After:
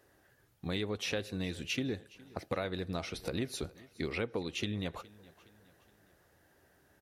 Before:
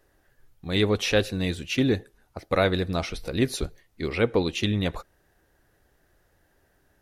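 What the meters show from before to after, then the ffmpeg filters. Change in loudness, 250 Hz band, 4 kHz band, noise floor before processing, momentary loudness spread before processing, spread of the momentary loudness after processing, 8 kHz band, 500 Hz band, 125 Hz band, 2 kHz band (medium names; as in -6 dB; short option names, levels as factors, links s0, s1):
-11.5 dB, -11.0 dB, -9.5 dB, -67 dBFS, 12 LU, 10 LU, -8.0 dB, -12.5 dB, -12.0 dB, -10.0 dB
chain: -af "highpass=82,acompressor=threshold=0.0224:ratio=6,aecho=1:1:416|832|1248:0.0794|0.0373|0.0175"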